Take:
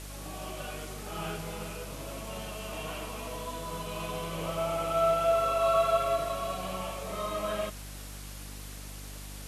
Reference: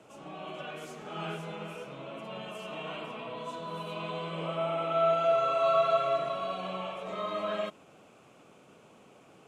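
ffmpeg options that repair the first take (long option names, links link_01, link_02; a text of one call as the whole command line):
ffmpeg -i in.wav -af "bandreject=frequency=49.8:width_type=h:width=4,bandreject=frequency=99.6:width_type=h:width=4,bandreject=frequency=149.4:width_type=h:width=4,bandreject=frequency=199.2:width_type=h:width=4,bandreject=frequency=249:width_type=h:width=4,bandreject=frequency=298.8:width_type=h:width=4,afwtdn=0.005" out.wav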